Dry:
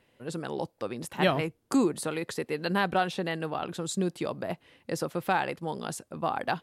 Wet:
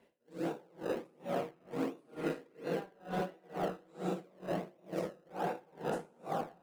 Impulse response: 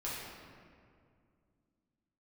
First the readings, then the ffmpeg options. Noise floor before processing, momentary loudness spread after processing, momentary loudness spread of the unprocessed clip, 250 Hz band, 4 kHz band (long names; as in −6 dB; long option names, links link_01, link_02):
−69 dBFS, 3 LU, 10 LU, −9.5 dB, −16.0 dB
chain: -filter_complex "[0:a]equalizer=frequency=520:width=0.5:gain=8.5,areverse,acompressor=threshold=-30dB:ratio=6,areverse,highpass=140[link_01];[1:a]atrim=start_sample=2205,asetrate=25137,aresample=44100[link_02];[link_01][link_02]afir=irnorm=-1:irlink=0,asplit=2[link_03][link_04];[link_04]acrusher=samples=27:mix=1:aa=0.000001:lfo=1:lforange=27:lforate=1.4,volume=-8dB[link_05];[link_03][link_05]amix=inputs=2:normalize=0,acrossover=split=710|3400[link_06][link_07][link_08];[link_06]acompressor=threshold=-26dB:ratio=4[link_09];[link_07]acompressor=threshold=-31dB:ratio=4[link_10];[link_08]acompressor=threshold=-50dB:ratio=4[link_11];[link_09][link_10][link_11]amix=inputs=3:normalize=0,aeval=exprs='val(0)*pow(10,-32*(0.5-0.5*cos(2*PI*2.2*n/s))/20)':channel_layout=same,volume=-5.5dB"